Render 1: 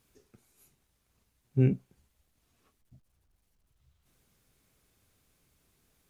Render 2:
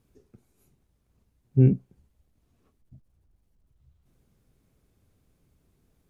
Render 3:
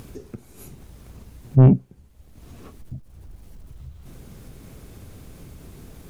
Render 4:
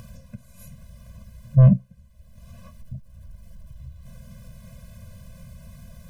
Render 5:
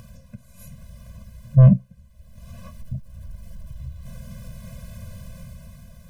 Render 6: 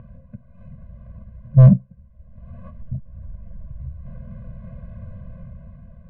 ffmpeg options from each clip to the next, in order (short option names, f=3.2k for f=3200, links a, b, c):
-af "tiltshelf=f=760:g=7"
-filter_complex "[0:a]asplit=2[a][b];[b]acompressor=mode=upward:threshold=-31dB:ratio=2.5,volume=2dB[c];[a][c]amix=inputs=2:normalize=0,asoftclip=type=tanh:threshold=-9dB,volume=3dB"
-af "afftfilt=real='re*eq(mod(floor(b*sr/1024/240),2),0)':imag='im*eq(mod(floor(b*sr/1024/240),2),0)':win_size=1024:overlap=0.75"
-af "dynaudnorm=f=110:g=13:m=7dB,volume=-1.5dB"
-af "lowpass=2.3k,adynamicsmooth=sensitivity=2.5:basefreq=1.4k,volume=2dB"